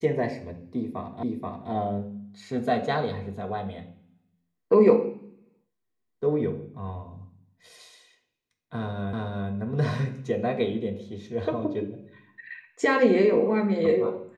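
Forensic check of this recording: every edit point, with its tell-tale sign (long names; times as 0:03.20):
0:01.23: the same again, the last 0.48 s
0:09.13: the same again, the last 0.37 s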